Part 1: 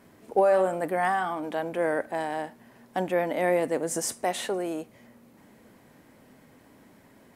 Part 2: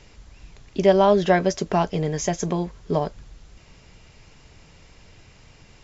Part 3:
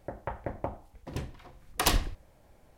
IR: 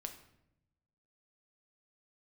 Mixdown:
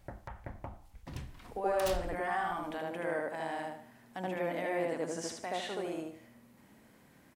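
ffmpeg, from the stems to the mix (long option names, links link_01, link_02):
-filter_complex "[0:a]acrossover=split=6000[link_01][link_02];[link_02]acompressor=threshold=-56dB:ratio=4:attack=1:release=60[link_03];[link_01][link_03]amix=inputs=2:normalize=0,adelay=1200,volume=-4.5dB,asplit=2[link_04][link_05];[link_05]volume=-5.5dB[link_06];[2:a]aeval=exprs='0.119*(abs(mod(val(0)/0.119+3,4)-2)-1)':channel_layout=same,volume=0.5dB[link_07];[link_04][link_07]amix=inputs=2:normalize=0,equalizer=frequency=460:width=0.87:gain=-9.5,alimiter=level_in=4.5dB:limit=-24dB:level=0:latency=1:release=278,volume=-4.5dB,volume=0dB[link_08];[link_06]aecho=0:1:76|152|228|304|380:1|0.35|0.122|0.0429|0.015[link_09];[link_08][link_09]amix=inputs=2:normalize=0"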